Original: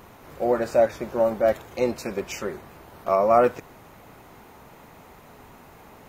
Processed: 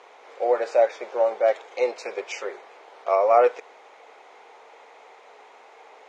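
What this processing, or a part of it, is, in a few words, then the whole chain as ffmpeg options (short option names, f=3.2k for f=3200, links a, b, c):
phone speaker on a table: -af "highpass=f=440:w=0.5412,highpass=f=440:w=1.3066,equalizer=f=460:t=q:w=4:g=7,equalizer=f=790:t=q:w=4:g=5,equalizer=f=2.2k:t=q:w=4:g=6,equalizer=f=3.4k:t=q:w=4:g=4,lowpass=f=6.9k:w=0.5412,lowpass=f=6.9k:w=1.3066,volume=-2dB"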